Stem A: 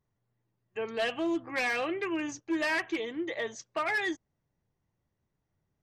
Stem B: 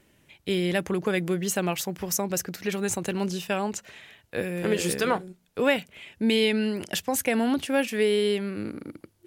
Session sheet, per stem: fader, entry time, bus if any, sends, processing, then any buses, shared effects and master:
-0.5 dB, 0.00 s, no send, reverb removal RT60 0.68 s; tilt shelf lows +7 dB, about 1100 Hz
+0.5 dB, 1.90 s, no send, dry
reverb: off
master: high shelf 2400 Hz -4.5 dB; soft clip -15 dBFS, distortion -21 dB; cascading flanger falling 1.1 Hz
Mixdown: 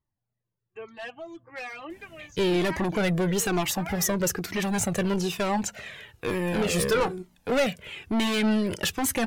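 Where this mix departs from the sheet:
stem A: missing tilt shelf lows +7 dB, about 1100 Hz; stem B +0.5 dB -> +12.0 dB

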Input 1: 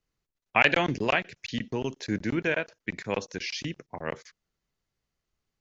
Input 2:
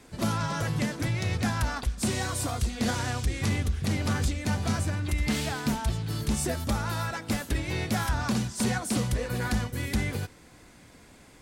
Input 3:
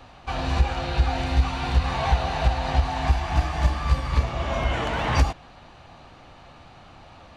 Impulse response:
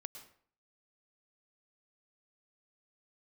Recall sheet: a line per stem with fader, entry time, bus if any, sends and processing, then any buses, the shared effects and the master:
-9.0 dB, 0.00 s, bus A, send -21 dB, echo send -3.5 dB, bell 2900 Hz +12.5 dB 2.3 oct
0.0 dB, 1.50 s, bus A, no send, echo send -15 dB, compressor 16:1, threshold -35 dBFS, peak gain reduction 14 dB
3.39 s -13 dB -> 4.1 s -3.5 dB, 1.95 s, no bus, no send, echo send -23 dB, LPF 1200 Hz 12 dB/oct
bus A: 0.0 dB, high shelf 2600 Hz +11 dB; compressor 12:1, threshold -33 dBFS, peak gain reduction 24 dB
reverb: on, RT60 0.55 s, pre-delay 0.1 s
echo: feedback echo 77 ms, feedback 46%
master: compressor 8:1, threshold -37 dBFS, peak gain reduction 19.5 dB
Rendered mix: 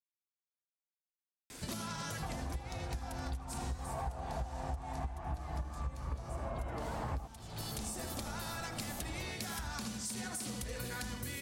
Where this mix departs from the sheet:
stem 1: muted; stem 2: missing compressor 16:1, threshold -35 dBFS, peak gain reduction 14 dB; stem 3 -13.0 dB -> -4.0 dB; reverb: off

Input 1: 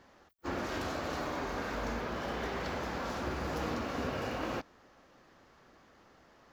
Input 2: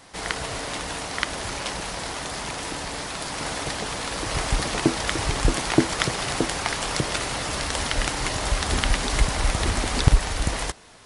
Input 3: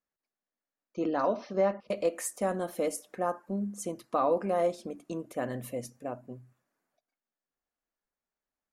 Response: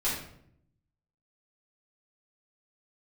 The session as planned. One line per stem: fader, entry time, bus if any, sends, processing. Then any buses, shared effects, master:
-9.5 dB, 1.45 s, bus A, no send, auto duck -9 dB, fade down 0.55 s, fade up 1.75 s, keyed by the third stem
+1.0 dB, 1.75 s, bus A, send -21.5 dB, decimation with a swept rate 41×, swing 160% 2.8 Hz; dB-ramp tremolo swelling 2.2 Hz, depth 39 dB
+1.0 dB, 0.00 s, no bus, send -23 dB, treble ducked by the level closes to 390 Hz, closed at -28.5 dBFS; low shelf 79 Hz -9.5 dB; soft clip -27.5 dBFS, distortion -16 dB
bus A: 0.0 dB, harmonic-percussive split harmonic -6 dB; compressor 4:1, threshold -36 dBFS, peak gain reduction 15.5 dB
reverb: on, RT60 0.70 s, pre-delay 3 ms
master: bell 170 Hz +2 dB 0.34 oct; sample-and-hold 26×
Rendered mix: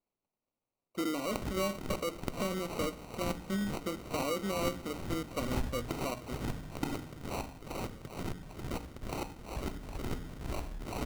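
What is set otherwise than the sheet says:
stem 1 -9.5 dB -> -3.0 dB; stem 2: entry 1.75 s -> 1.05 s

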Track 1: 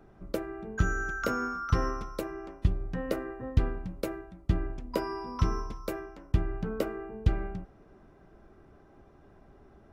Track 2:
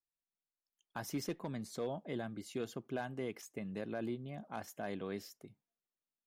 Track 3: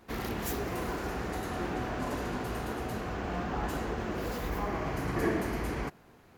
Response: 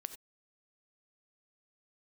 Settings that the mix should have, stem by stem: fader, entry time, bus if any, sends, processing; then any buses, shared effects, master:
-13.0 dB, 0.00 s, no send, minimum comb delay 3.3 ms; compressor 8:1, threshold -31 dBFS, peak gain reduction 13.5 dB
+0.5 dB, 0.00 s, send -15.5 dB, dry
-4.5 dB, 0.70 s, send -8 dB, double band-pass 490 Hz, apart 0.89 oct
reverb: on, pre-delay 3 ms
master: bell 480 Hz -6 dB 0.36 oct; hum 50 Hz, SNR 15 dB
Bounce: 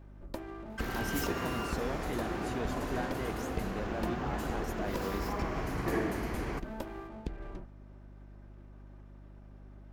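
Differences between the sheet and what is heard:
stem 1 -13.0 dB -> -3.0 dB; stem 3: missing double band-pass 490 Hz, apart 0.89 oct; master: missing bell 480 Hz -6 dB 0.36 oct

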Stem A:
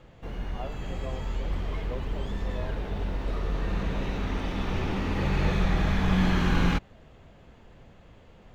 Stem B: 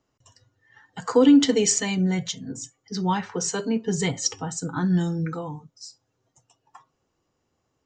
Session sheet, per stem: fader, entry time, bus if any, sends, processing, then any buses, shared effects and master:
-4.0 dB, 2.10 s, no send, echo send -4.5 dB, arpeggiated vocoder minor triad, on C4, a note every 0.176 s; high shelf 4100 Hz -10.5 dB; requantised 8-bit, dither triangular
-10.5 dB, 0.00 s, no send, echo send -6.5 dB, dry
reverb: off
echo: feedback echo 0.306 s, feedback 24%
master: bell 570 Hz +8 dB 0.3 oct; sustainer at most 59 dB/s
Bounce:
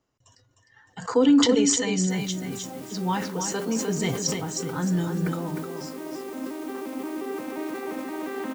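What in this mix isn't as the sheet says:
stem B -10.5 dB -> -3.0 dB; master: missing bell 570 Hz +8 dB 0.3 oct

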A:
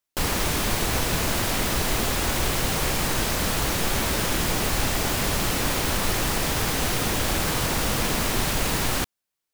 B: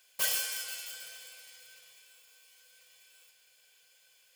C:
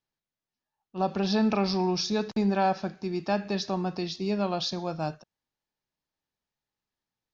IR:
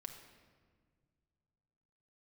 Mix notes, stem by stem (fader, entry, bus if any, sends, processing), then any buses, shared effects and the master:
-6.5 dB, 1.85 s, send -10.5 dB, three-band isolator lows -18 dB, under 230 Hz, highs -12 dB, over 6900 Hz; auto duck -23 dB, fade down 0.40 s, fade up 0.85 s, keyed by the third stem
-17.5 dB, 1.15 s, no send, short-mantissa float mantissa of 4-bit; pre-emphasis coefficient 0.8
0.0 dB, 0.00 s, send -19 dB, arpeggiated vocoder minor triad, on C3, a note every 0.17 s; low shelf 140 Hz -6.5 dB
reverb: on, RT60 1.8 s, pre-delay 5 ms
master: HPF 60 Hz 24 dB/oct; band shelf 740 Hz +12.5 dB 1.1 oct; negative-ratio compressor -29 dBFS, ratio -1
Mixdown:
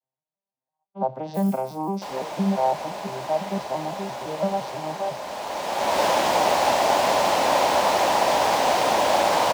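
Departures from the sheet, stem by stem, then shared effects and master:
stem A -6.5 dB -> 0.0 dB; master: missing negative-ratio compressor -29 dBFS, ratio -1

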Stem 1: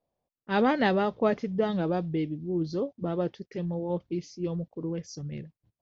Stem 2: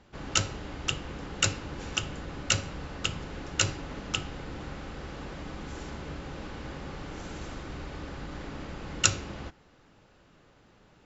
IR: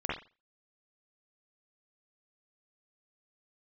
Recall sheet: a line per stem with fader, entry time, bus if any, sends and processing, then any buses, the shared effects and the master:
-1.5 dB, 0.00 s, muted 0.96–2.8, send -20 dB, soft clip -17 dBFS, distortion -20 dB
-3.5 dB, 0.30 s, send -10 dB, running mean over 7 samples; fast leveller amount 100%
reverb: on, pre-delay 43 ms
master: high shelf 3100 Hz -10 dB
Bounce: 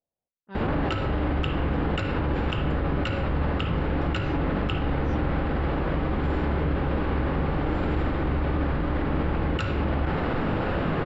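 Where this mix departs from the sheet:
stem 1 -1.5 dB -> -11.5 dB; stem 2: entry 0.30 s -> 0.55 s

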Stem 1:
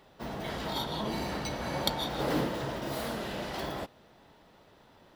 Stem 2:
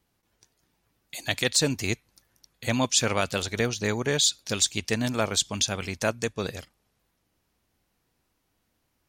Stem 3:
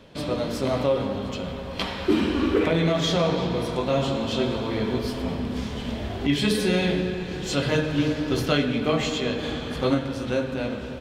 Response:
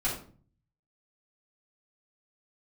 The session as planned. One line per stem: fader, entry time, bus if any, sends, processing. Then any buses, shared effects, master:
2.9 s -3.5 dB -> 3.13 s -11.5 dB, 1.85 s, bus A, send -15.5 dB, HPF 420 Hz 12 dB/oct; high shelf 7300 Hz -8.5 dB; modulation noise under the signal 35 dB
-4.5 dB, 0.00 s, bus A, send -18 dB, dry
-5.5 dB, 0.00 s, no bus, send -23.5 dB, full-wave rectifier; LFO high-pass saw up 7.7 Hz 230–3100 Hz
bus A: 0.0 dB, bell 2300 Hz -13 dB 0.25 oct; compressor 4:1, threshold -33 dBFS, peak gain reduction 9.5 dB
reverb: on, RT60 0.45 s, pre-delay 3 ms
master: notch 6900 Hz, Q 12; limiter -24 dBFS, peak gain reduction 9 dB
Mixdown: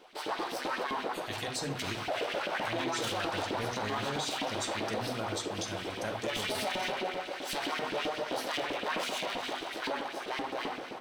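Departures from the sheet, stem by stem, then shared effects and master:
stem 1: muted; stem 2 -4.5 dB -> -13.5 dB; reverb return +8.5 dB

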